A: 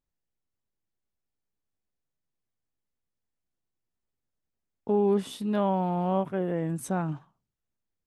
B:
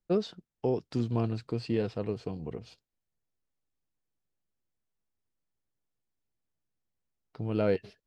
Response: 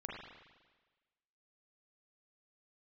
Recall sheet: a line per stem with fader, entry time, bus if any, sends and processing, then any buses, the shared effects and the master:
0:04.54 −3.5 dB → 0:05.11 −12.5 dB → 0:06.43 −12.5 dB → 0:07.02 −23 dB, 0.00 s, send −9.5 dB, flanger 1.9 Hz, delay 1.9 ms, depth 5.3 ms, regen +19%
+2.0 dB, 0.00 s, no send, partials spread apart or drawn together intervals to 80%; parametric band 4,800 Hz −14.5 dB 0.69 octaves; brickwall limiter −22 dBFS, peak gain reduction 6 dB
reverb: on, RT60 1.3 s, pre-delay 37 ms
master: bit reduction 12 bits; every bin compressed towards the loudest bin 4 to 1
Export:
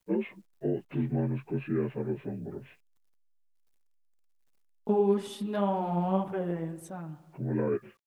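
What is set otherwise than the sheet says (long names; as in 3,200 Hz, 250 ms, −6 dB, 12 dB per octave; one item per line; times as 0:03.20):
stem A −3.5 dB → +8.5 dB
master: missing every bin compressed towards the loudest bin 4 to 1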